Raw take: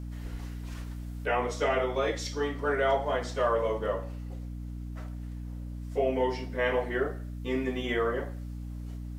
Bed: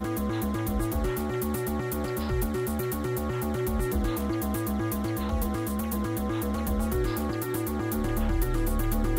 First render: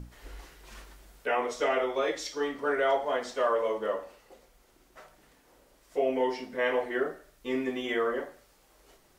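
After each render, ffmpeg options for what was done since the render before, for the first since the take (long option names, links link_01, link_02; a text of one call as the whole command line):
ffmpeg -i in.wav -af "bandreject=frequency=60:width_type=h:width=6,bandreject=frequency=120:width_type=h:width=6,bandreject=frequency=180:width_type=h:width=6,bandreject=frequency=240:width_type=h:width=6,bandreject=frequency=300:width_type=h:width=6" out.wav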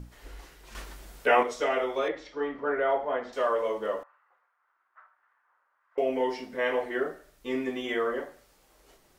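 ffmpeg -i in.wav -filter_complex "[0:a]asettb=1/sr,asplit=3[link_01][link_02][link_03];[link_01]atrim=end=2.084[link_04];[link_02]atrim=start=2.08:end=3.33,asetpts=PTS-STARTPTS,afade=type=in:duration=0.004:curve=qsin,afade=type=out:start_time=1.246:duration=0.004:curve=qsin,lowpass=2100[link_05];[link_03]atrim=start=3.326[link_06];[link_04][link_05]acrossfade=duration=0.004:curve1=hsin:curve2=qsin[link_07];[link_07][link_06]acrossfade=duration=0.004:curve1=qsin:curve2=hsin,asettb=1/sr,asplit=3[link_08][link_09][link_10];[link_08]atrim=end=4.034[link_11];[link_09]atrim=start=4.03:end=5.98,asetpts=PTS-STARTPTS,afade=type=in:duration=0.004:curve=qsin,afade=type=out:start_time=1.946:duration=0.004:curve=qsin,asuperpass=centerf=1300:order=4:qfactor=1.9[link_12];[link_10]atrim=start=5.976[link_13];[link_11][link_12]acrossfade=duration=0.004:curve1=hsin:curve2=qsin[link_14];[link_14][link_13]acrossfade=duration=0.004:curve1=qsin:curve2=hsin,asplit=3[link_15][link_16][link_17];[link_15]atrim=end=0.752[link_18];[link_16]atrim=start=0.748:end=1.432,asetpts=PTS-STARTPTS,volume=7dB[link_19];[link_17]atrim=start=1.428[link_20];[link_18][link_19]acrossfade=duration=0.004:curve1=hsin:curve2=hsin[link_21];[link_21][link_20]acrossfade=duration=0.004:curve1=hsin:curve2=hsin" out.wav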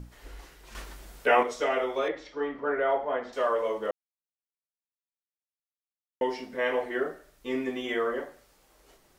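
ffmpeg -i in.wav -filter_complex "[0:a]asplit=3[link_01][link_02][link_03];[link_01]atrim=end=3.91,asetpts=PTS-STARTPTS,afade=type=out:start_time=3.906:duration=0.004:curve=hsin[link_04];[link_02]atrim=start=3.91:end=6.21,asetpts=PTS-STARTPTS,volume=0[link_05];[link_03]atrim=start=6.21,asetpts=PTS-STARTPTS,afade=type=in:duration=0.004:curve=hsin[link_06];[link_04][link_05][link_06]concat=n=3:v=0:a=1" out.wav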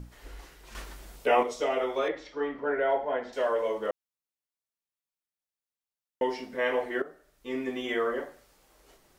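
ffmpeg -i in.wav -filter_complex "[0:a]asettb=1/sr,asplit=3[link_01][link_02][link_03];[link_01]atrim=end=1.164[link_04];[link_02]atrim=start=1.16:end=1.81,asetpts=PTS-STARTPTS,afade=type=in:duration=0.004:curve=qsin,afade=type=out:start_time=0.646:duration=0.004:curve=qsin,equalizer=frequency=1600:width=1.9:gain=-8.5[link_05];[link_03]atrim=start=1.806[link_06];[link_04][link_05]acrossfade=duration=0.004:curve1=hsin:curve2=qsin[link_07];[link_07][link_06]acrossfade=duration=0.004:curve1=qsin:curve2=hsin,asettb=1/sr,asplit=3[link_08][link_09][link_10];[link_08]atrim=end=2.624[link_11];[link_09]atrim=start=2.62:end=3.77,asetpts=PTS-STARTPTS,afade=type=in:duration=0.004:curve=qsin,afade=type=out:start_time=1.146:duration=0.004:curve=qsin,bandreject=frequency=1200:width=5.5[link_12];[link_10]atrim=start=3.766[link_13];[link_11][link_12]acrossfade=duration=0.004:curve1=hsin:curve2=qsin[link_14];[link_14][link_13]acrossfade=duration=0.004:curve1=qsin:curve2=hsin,asplit=2[link_15][link_16];[link_15]atrim=end=7.02,asetpts=PTS-STARTPTS,afade=type=out:start_time=7.016:duration=0.004:curve=hsin:silence=0.211349[link_17];[link_16]atrim=start=7.02,asetpts=PTS-STARTPTS,afade=type=in:duration=0.79:silence=0.211349[link_18];[link_17][link_18]concat=n=2:v=0:a=1" out.wav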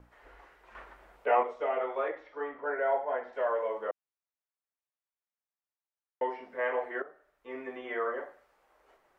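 ffmpeg -i in.wav -filter_complex "[0:a]acrossover=split=3100[link_01][link_02];[link_02]acompressor=threshold=-59dB:ratio=4:attack=1:release=60[link_03];[link_01][link_03]amix=inputs=2:normalize=0,acrossover=split=460 2200:gain=0.158 1 0.126[link_04][link_05][link_06];[link_04][link_05][link_06]amix=inputs=3:normalize=0" out.wav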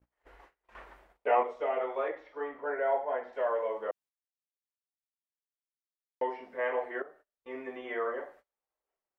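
ffmpeg -i in.wav -af "agate=range=-27dB:threshold=-55dB:ratio=16:detection=peak,equalizer=frequency=1400:width_type=o:width=0.59:gain=-3" out.wav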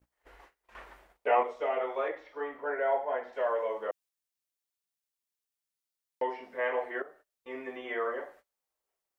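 ffmpeg -i in.wav -af "highshelf=frequency=2900:gain=7" out.wav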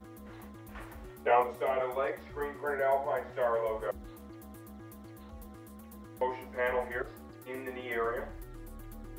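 ffmpeg -i in.wav -i bed.wav -filter_complex "[1:a]volume=-20dB[link_01];[0:a][link_01]amix=inputs=2:normalize=0" out.wav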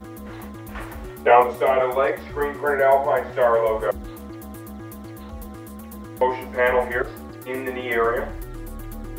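ffmpeg -i in.wav -af "volume=12dB,alimiter=limit=-2dB:level=0:latency=1" out.wav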